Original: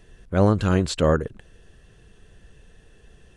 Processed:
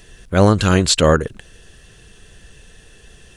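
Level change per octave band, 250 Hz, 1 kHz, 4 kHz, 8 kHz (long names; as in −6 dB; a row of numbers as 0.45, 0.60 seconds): +5.0, +7.5, +13.5, +15.5 decibels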